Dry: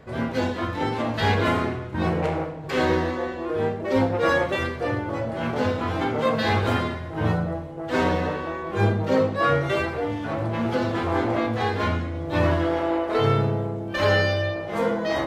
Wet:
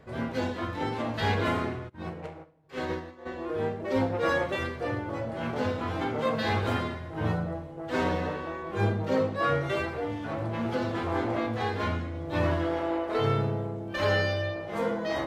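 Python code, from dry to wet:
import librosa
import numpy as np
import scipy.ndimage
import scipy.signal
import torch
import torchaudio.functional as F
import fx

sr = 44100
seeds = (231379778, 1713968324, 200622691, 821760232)

y = fx.upward_expand(x, sr, threshold_db=-33.0, expansion=2.5, at=(1.88, 3.25), fade=0.02)
y = y * 10.0 ** (-5.5 / 20.0)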